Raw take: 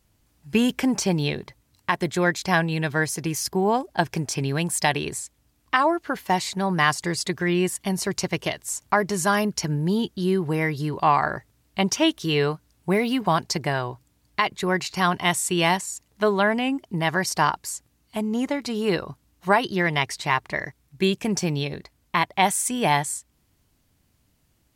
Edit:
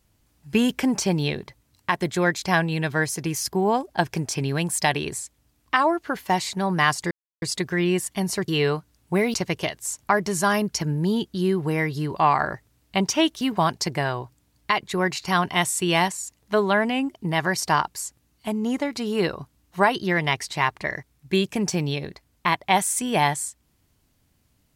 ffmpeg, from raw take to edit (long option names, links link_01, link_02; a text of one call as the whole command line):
ffmpeg -i in.wav -filter_complex "[0:a]asplit=5[link_01][link_02][link_03][link_04][link_05];[link_01]atrim=end=7.11,asetpts=PTS-STARTPTS,afade=type=out:start_time=7.106:duration=0.004:curve=hsin,apad=pad_dur=0.31[link_06];[link_02]atrim=start=7.11:end=8.172,asetpts=PTS-STARTPTS,afade=type=in:duration=0.004:curve=hsin[link_07];[link_03]atrim=start=12.238:end=13.102[link_08];[link_04]atrim=start=8.168:end=12.242[link_09];[link_05]atrim=start=13.098[link_10];[link_06][link_07]concat=n=2:v=0:a=1[link_11];[link_11][link_08]acrossfade=duration=0.004:curve1=hsin:curve2=hsin[link_12];[link_12][link_09]acrossfade=duration=0.004:curve1=hsin:curve2=hsin[link_13];[link_13][link_10]acrossfade=duration=0.004:curve1=hsin:curve2=hsin" out.wav